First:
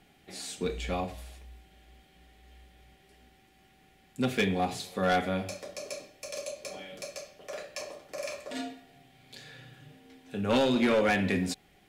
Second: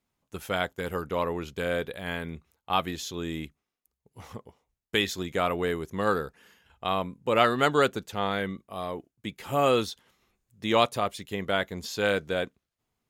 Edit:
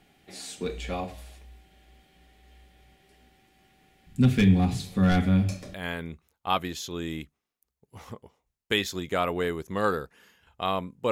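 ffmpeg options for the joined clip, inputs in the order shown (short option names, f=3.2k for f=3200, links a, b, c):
-filter_complex "[0:a]asplit=3[a][b][c];[a]afade=t=out:st=4.06:d=0.02[d];[b]asubboost=boost=11:cutoff=170,afade=t=in:st=4.06:d=0.02,afade=t=out:st=5.74:d=0.02[e];[c]afade=t=in:st=5.74:d=0.02[f];[d][e][f]amix=inputs=3:normalize=0,apad=whole_dur=11.11,atrim=end=11.11,atrim=end=5.742[g];[1:a]atrim=start=1.968:end=7.34[h];[g][h]acrossfade=d=0.004:c1=hsin:c2=hsin"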